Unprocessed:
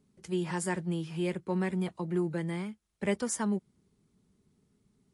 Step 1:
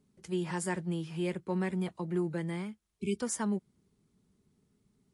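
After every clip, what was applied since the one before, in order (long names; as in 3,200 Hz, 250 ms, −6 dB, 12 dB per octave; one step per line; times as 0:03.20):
healed spectral selection 0:02.98–0:03.18, 430–2,200 Hz before
level −1.5 dB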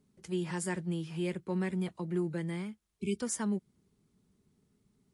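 dynamic equaliser 840 Hz, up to −4 dB, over −46 dBFS, Q 0.91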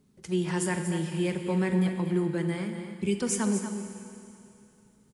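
single-tap delay 239 ms −9.5 dB
four-comb reverb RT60 2.8 s, combs from 33 ms, DRR 7 dB
level +5.5 dB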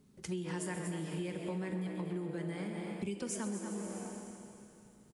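on a send: echo with shifted repeats 132 ms, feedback 51%, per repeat +130 Hz, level −13 dB
on the sum: downward compressor 6 to 1, threshold −36 dBFS, peak gain reduction 14 dB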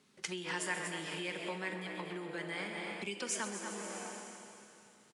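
resonant band-pass 2,600 Hz, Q 0.61
level +10 dB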